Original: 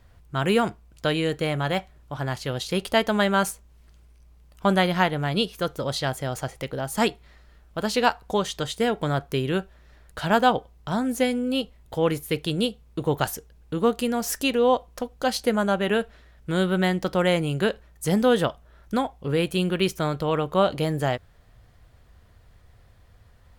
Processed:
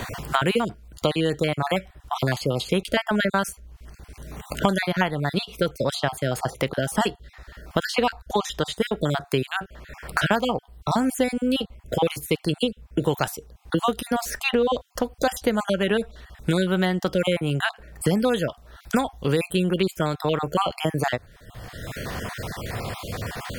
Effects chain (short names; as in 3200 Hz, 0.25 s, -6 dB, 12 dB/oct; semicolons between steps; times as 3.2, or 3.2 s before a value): random spectral dropouts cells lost 31%; three-band squash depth 100%; gain +1.5 dB